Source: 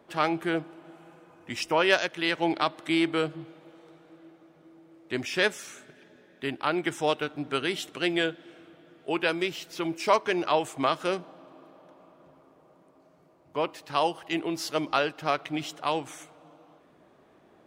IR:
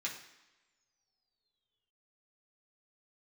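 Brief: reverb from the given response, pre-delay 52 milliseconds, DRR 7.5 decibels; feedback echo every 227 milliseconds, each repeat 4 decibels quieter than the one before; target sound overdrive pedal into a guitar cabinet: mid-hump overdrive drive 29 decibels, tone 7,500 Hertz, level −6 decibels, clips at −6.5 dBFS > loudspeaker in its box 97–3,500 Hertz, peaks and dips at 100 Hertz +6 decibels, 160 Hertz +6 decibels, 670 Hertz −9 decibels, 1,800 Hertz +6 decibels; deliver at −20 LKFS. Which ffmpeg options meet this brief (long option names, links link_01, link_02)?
-filter_complex "[0:a]aecho=1:1:227|454|681|908|1135|1362|1589|1816|2043:0.631|0.398|0.25|0.158|0.0994|0.0626|0.0394|0.0249|0.0157,asplit=2[link_01][link_02];[1:a]atrim=start_sample=2205,adelay=52[link_03];[link_02][link_03]afir=irnorm=-1:irlink=0,volume=-9.5dB[link_04];[link_01][link_04]amix=inputs=2:normalize=0,asplit=2[link_05][link_06];[link_06]highpass=frequency=720:poles=1,volume=29dB,asoftclip=type=tanh:threshold=-6.5dB[link_07];[link_05][link_07]amix=inputs=2:normalize=0,lowpass=frequency=7500:poles=1,volume=-6dB,highpass=97,equalizer=frequency=100:width_type=q:width=4:gain=6,equalizer=frequency=160:width_type=q:width=4:gain=6,equalizer=frequency=670:width_type=q:width=4:gain=-9,equalizer=frequency=1800:width_type=q:width=4:gain=6,lowpass=frequency=3500:width=0.5412,lowpass=frequency=3500:width=1.3066,volume=-5.5dB"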